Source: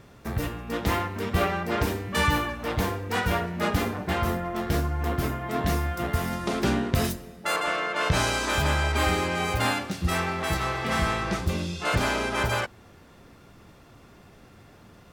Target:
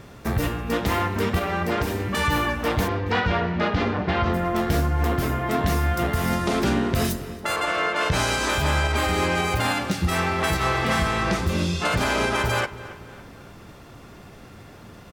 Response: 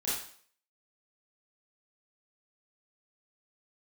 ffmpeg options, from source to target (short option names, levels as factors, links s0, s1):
-filter_complex "[0:a]asplit=3[s0][s1][s2];[s0]afade=t=out:st=1.38:d=0.02[s3];[s1]acompressor=threshold=0.0447:ratio=6,afade=t=in:st=1.38:d=0.02,afade=t=out:st=1.99:d=0.02[s4];[s2]afade=t=in:st=1.99:d=0.02[s5];[s3][s4][s5]amix=inputs=3:normalize=0,asplit=3[s6][s7][s8];[s6]afade=t=out:st=2.87:d=0.02[s9];[s7]lowpass=f=4700:w=0.5412,lowpass=f=4700:w=1.3066,afade=t=in:st=2.87:d=0.02,afade=t=out:st=4.33:d=0.02[s10];[s8]afade=t=in:st=4.33:d=0.02[s11];[s9][s10][s11]amix=inputs=3:normalize=0,alimiter=limit=0.106:level=0:latency=1:release=149,asplit=2[s12][s13];[s13]adelay=277,lowpass=f=3300:p=1,volume=0.158,asplit=2[s14][s15];[s15]adelay=277,lowpass=f=3300:p=1,volume=0.51,asplit=2[s16][s17];[s17]adelay=277,lowpass=f=3300:p=1,volume=0.51,asplit=2[s18][s19];[s19]adelay=277,lowpass=f=3300:p=1,volume=0.51,asplit=2[s20][s21];[s21]adelay=277,lowpass=f=3300:p=1,volume=0.51[s22];[s12][s14][s16][s18][s20][s22]amix=inputs=6:normalize=0,volume=2.24"